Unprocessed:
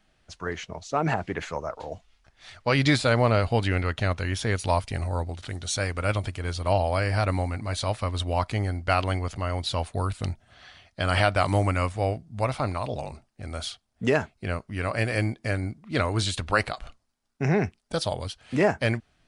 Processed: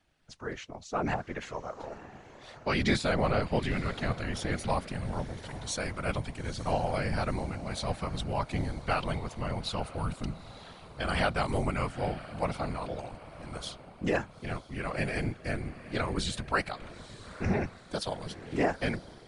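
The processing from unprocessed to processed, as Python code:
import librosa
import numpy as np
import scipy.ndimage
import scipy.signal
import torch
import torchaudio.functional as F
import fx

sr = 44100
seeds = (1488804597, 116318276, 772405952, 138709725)

y = fx.echo_diffused(x, sr, ms=909, feedback_pct=46, wet_db=-15.0)
y = fx.whisperise(y, sr, seeds[0])
y = y * 10.0 ** (-6.0 / 20.0)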